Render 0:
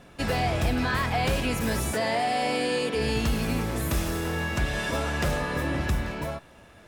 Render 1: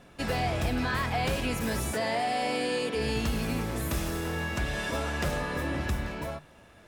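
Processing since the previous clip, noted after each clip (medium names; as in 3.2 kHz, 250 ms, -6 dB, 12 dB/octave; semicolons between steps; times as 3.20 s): hum notches 50/100/150 Hz; trim -3 dB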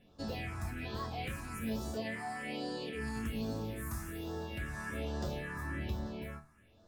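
chord resonator D2 major, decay 0.24 s; phase shifter stages 4, 1.2 Hz, lowest notch 500–2300 Hz; trim +1.5 dB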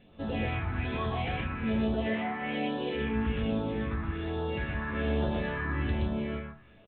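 loudspeakers at several distances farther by 42 m -2 dB, 53 m -7 dB; trim +5 dB; A-law 64 kbps 8 kHz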